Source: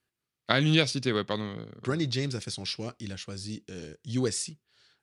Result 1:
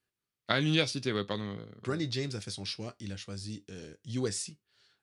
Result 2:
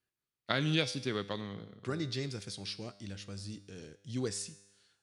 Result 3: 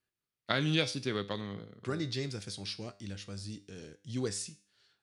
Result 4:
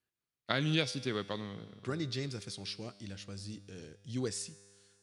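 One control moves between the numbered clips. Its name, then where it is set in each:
resonator, decay: 0.15, 1, 0.44, 2.2 s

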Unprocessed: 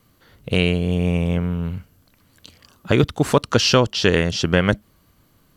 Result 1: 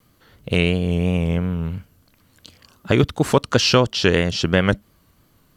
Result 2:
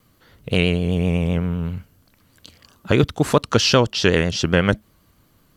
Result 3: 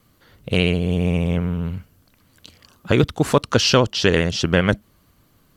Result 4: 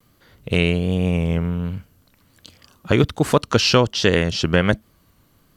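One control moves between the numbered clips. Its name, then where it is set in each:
vibrato, rate: 2.9, 7.8, 15, 1.3 Hz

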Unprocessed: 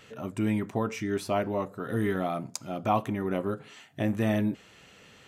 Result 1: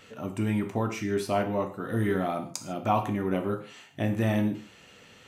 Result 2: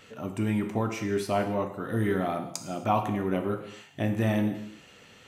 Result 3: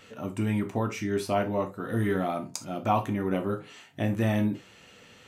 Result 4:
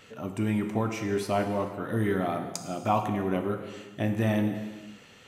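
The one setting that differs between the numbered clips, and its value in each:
non-linear reverb, gate: 0.18, 0.3, 0.1, 0.51 s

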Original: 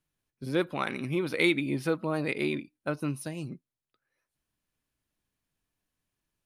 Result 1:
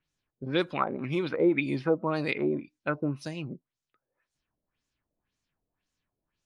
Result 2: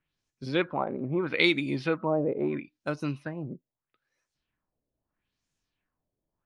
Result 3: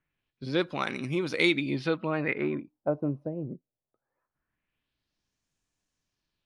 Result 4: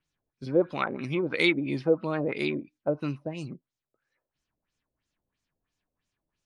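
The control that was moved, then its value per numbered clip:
LFO low-pass, rate: 1.9, 0.77, 0.22, 3 Hz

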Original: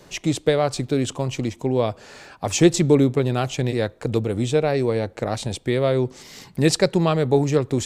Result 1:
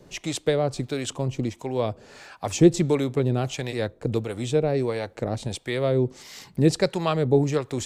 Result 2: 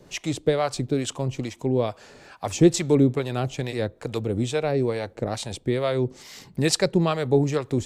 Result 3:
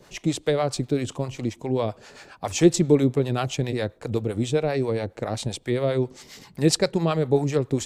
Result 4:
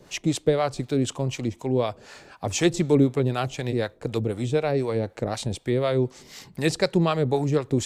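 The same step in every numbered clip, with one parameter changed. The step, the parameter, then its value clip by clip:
harmonic tremolo, rate: 1.5, 2.3, 7.5, 4 Hz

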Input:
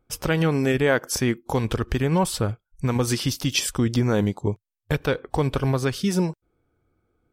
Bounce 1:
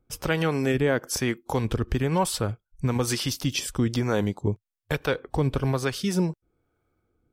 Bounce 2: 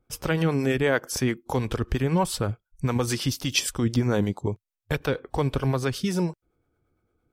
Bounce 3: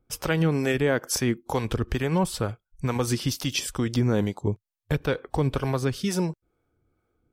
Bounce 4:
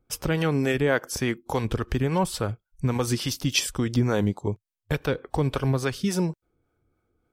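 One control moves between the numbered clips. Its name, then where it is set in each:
harmonic tremolo, rate: 1.1, 8.8, 2.2, 3.5 Hz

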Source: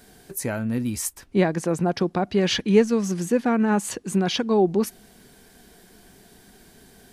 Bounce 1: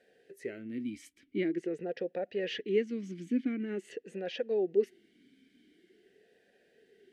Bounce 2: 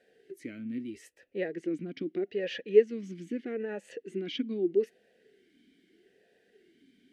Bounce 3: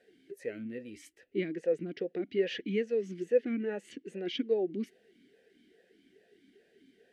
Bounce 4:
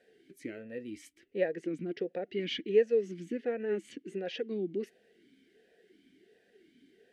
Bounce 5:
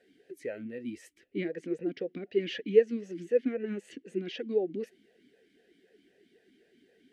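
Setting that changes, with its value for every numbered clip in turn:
vowel sweep, rate: 0.46, 0.79, 2.4, 1.4, 3.9 Hz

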